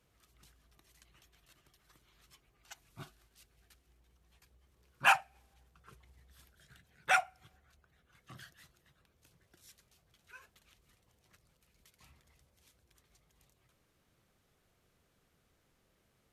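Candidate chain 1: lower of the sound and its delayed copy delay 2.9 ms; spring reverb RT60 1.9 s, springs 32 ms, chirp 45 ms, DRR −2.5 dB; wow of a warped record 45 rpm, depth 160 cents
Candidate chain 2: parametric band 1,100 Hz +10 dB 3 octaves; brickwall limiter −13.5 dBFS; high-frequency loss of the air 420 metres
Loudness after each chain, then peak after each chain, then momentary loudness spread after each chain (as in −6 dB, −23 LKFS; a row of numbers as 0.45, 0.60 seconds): −30.5, −32.5 LKFS; −12.0, −16.0 dBFS; 21, 23 LU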